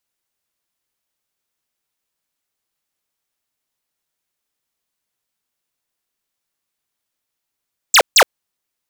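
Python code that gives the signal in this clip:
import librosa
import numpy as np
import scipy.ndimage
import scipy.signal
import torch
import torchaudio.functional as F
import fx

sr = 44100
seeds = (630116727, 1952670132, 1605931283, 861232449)

y = fx.laser_zaps(sr, level_db=-8, start_hz=8500.0, end_hz=410.0, length_s=0.07, wave='square', shots=2, gap_s=0.15)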